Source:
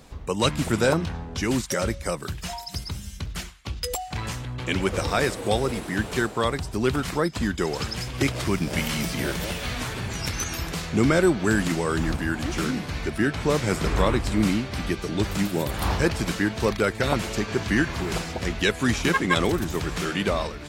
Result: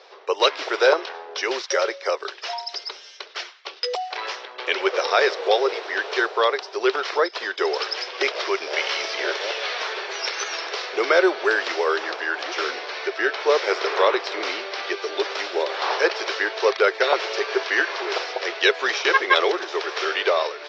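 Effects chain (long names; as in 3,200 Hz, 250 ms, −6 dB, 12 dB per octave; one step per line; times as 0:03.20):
Chebyshev band-pass filter 390–5,600 Hz, order 5
level +6 dB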